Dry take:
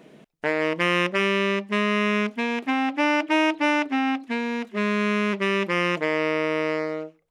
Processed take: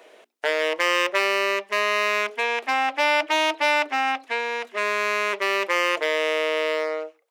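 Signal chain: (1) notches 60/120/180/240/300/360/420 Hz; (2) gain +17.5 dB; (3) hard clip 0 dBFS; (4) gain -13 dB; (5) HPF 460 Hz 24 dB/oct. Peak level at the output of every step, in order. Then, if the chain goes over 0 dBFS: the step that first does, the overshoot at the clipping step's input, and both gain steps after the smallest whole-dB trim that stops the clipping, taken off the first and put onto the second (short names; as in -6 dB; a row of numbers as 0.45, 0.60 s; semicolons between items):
-9.0, +8.5, 0.0, -13.0, -8.0 dBFS; step 2, 8.5 dB; step 2 +8.5 dB, step 4 -4 dB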